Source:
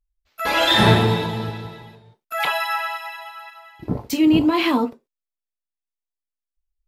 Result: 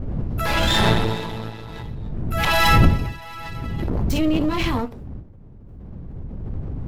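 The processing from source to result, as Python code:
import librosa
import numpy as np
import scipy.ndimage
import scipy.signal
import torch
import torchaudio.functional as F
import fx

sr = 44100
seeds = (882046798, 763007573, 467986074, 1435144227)

y = np.where(x < 0.0, 10.0 ** (-12.0 / 20.0) * x, x)
y = fx.dmg_wind(y, sr, seeds[0], corner_hz=120.0, level_db=-25.0)
y = fx.pre_swell(y, sr, db_per_s=23.0)
y = y * librosa.db_to_amplitude(-2.0)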